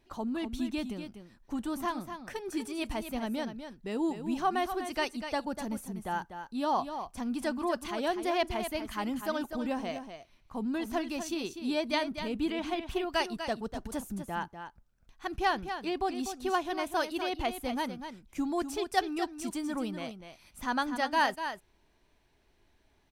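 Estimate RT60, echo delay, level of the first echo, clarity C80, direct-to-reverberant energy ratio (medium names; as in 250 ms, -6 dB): no reverb, 246 ms, -9.0 dB, no reverb, no reverb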